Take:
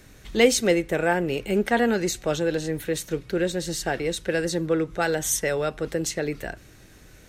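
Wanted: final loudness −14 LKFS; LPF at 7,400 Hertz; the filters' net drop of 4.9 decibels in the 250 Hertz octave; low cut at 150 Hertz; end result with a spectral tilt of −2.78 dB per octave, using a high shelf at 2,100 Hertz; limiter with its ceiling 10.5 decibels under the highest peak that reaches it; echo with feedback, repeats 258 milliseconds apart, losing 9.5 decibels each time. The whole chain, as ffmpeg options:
ffmpeg -i in.wav -af "highpass=150,lowpass=7400,equalizer=frequency=250:width_type=o:gain=-6.5,highshelf=frequency=2100:gain=5.5,alimiter=limit=-17dB:level=0:latency=1,aecho=1:1:258|516|774|1032:0.335|0.111|0.0365|0.012,volume=13.5dB" out.wav

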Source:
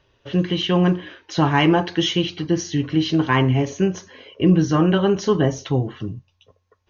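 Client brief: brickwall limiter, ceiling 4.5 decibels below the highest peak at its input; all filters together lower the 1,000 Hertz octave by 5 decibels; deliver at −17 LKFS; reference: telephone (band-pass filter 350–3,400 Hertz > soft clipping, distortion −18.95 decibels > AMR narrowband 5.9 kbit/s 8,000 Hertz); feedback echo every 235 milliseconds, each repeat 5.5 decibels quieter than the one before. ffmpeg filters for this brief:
ffmpeg -i in.wav -af "equalizer=frequency=1000:width_type=o:gain=-6,alimiter=limit=-10.5dB:level=0:latency=1,highpass=350,lowpass=3400,aecho=1:1:235|470|705|940|1175|1410|1645:0.531|0.281|0.149|0.079|0.0419|0.0222|0.0118,asoftclip=threshold=-16dB,volume=11.5dB" -ar 8000 -c:a libopencore_amrnb -b:a 5900 out.amr

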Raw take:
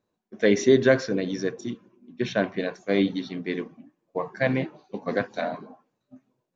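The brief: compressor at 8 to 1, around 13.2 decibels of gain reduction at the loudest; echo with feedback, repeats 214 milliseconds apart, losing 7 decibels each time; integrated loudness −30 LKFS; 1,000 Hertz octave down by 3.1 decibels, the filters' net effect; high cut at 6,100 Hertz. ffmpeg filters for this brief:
ffmpeg -i in.wav -af "lowpass=6100,equalizer=frequency=1000:width_type=o:gain=-5,acompressor=threshold=-27dB:ratio=8,aecho=1:1:214|428|642|856|1070:0.447|0.201|0.0905|0.0407|0.0183,volume=3.5dB" out.wav

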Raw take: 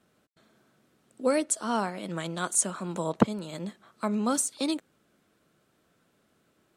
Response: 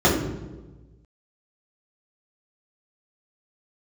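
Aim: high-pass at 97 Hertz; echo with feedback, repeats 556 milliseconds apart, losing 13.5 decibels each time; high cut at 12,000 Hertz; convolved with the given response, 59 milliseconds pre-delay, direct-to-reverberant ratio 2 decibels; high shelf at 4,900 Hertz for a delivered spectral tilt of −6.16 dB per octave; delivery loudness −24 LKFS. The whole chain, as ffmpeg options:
-filter_complex "[0:a]highpass=97,lowpass=12000,highshelf=frequency=4900:gain=-8.5,aecho=1:1:556|1112:0.211|0.0444,asplit=2[link_01][link_02];[1:a]atrim=start_sample=2205,adelay=59[link_03];[link_02][link_03]afir=irnorm=-1:irlink=0,volume=-23.5dB[link_04];[link_01][link_04]amix=inputs=2:normalize=0,volume=1.5dB"

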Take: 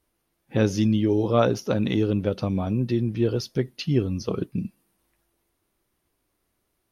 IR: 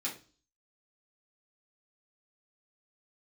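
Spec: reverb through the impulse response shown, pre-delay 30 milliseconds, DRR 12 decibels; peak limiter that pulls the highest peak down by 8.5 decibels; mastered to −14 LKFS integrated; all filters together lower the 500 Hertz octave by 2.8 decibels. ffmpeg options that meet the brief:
-filter_complex "[0:a]equalizer=frequency=500:width_type=o:gain=-3.5,alimiter=limit=-17.5dB:level=0:latency=1,asplit=2[link_01][link_02];[1:a]atrim=start_sample=2205,adelay=30[link_03];[link_02][link_03]afir=irnorm=-1:irlink=0,volume=-14.5dB[link_04];[link_01][link_04]amix=inputs=2:normalize=0,volume=14.5dB"

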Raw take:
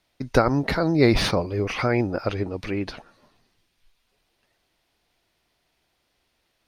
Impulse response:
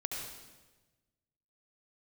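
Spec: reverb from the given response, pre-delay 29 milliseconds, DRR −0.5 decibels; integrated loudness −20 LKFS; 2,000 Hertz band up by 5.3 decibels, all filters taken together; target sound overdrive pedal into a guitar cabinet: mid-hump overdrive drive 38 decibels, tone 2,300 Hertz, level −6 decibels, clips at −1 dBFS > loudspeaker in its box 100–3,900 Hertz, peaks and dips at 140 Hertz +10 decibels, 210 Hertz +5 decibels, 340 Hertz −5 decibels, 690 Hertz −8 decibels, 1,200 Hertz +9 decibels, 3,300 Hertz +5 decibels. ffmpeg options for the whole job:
-filter_complex "[0:a]equalizer=frequency=2000:width_type=o:gain=5,asplit=2[link_01][link_02];[1:a]atrim=start_sample=2205,adelay=29[link_03];[link_02][link_03]afir=irnorm=-1:irlink=0,volume=-1.5dB[link_04];[link_01][link_04]amix=inputs=2:normalize=0,asplit=2[link_05][link_06];[link_06]highpass=frequency=720:poles=1,volume=38dB,asoftclip=type=tanh:threshold=-1dB[link_07];[link_05][link_07]amix=inputs=2:normalize=0,lowpass=frequency=2300:poles=1,volume=-6dB,highpass=100,equalizer=frequency=140:width_type=q:width=4:gain=10,equalizer=frequency=210:width_type=q:width=4:gain=5,equalizer=frequency=340:width_type=q:width=4:gain=-5,equalizer=frequency=690:width_type=q:width=4:gain=-8,equalizer=frequency=1200:width_type=q:width=4:gain=9,equalizer=frequency=3300:width_type=q:width=4:gain=5,lowpass=frequency=3900:width=0.5412,lowpass=frequency=3900:width=1.3066,volume=-12dB"

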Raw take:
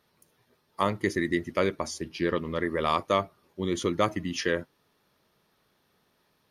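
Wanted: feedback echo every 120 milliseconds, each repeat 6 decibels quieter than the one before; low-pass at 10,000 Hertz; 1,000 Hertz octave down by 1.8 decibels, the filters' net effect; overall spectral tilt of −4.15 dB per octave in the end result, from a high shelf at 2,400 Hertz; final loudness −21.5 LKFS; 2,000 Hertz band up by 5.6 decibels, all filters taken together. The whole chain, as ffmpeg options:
ffmpeg -i in.wav -af "lowpass=10000,equalizer=frequency=1000:width_type=o:gain=-5,equalizer=frequency=2000:width_type=o:gain=6,highshelf=frequency=2400:gain=3.5,aecho=1:1:120|240|360|480|600|720:0.501|0.251|0.125|0.0626|0.0313|0.0157,volume=5dB" out.wav

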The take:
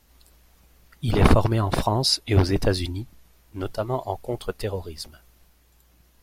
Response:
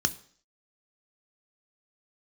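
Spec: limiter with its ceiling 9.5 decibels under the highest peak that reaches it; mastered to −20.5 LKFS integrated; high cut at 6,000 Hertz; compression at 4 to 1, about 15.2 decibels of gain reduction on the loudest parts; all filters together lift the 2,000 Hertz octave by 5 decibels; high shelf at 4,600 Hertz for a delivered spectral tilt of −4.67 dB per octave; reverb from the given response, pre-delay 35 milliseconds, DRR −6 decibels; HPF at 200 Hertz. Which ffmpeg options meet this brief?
-filter_complex "[0:a]highpass=200,lowpass=6000,equalizer=frequency=2000:width_type=o:gain=5,highshelf=frequency=4600:gain=7,acompressor=threshold=-32dB:ratio=4,alimiter=level_in=0.5dB:limit=-24dB:level=0:latency=1,volume=-0.5dB,asplit=2[link_01][link_02];[1:a]atrim=start_sample=2205,adelay=35[link_03];[link_02][link_03]afir=irnorm=-1:irlink=0,volume=-1.5dB[link_04];[link_01][link_04]amix=inputs=2:normalize=0,volume=9dB"

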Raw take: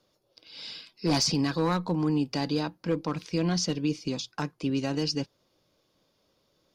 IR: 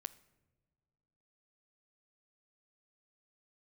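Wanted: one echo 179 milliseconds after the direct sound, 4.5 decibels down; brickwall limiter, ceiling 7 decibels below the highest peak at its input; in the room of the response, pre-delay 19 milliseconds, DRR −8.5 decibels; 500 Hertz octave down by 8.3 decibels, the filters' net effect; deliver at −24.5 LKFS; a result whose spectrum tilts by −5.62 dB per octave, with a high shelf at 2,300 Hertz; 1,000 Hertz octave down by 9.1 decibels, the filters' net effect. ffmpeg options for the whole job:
-filter_complex "[0:a]equalizer=frequency=500:width_type=o:gain=-8.5,equalizer=frequency=1000:width_type=o:gain=-8,highshelf=frequency=2300:gain=-4,alimiter=level_in=1.5dB:limit=-24dB:level=0:latency=1,volume=-1.5dB,aecho=1:1:179:0.596,asplit=2[link_01][link_02];[1:a]atrim=start_sample=2205,adelay=19[link_03];[link_02][link_03]afir=irnorm=-1:irlink=0,volume=12.5dB[link_04];[link_01][link_04]amix=inputs=2:normalize=0"

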